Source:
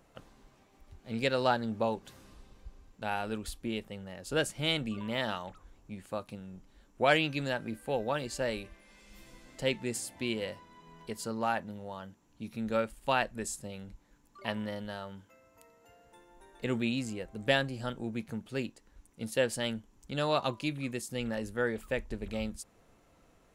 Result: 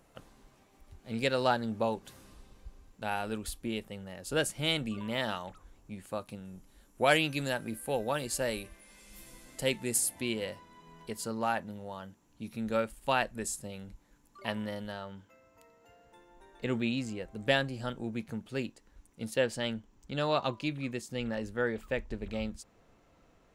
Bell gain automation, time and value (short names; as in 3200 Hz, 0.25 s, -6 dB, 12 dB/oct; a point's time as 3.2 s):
bell 11000 Hz 0.86 oct
+5.5 dB
from 6.45 s +15 dB
from 10.21 s +4 dB
from 14.92 s -7.5 dB
from 17.23 s -1.5 dB
from 19.34 s -10 dB